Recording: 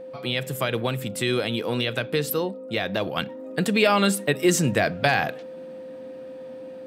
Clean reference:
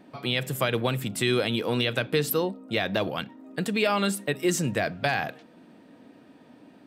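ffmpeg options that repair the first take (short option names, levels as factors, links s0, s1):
-af "bandreject=f=520:w=30,asetnsamples=n=441:p=0,asendcmd='3.16 volume volume -5dB',volume=1"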